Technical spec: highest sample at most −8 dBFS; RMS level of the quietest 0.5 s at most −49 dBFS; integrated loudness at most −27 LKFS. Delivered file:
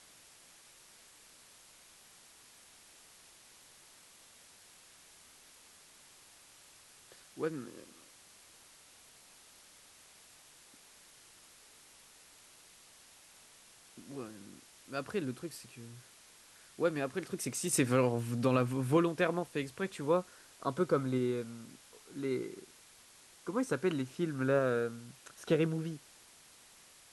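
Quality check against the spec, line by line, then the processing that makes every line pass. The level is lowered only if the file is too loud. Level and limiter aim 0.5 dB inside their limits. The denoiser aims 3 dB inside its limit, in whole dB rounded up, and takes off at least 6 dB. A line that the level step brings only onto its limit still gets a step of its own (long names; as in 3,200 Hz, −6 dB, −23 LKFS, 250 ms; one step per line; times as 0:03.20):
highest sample −16.0 dBFS: in spec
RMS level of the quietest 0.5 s −59 dBFS: in spec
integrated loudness −34.0 LKFS: in spec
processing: no processing needed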